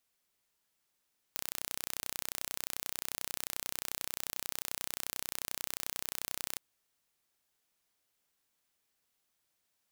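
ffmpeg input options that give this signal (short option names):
-f lavfi -i "aevalsrc='0.355*eq(mod(n,1409),0)':d=5.22:s=44100"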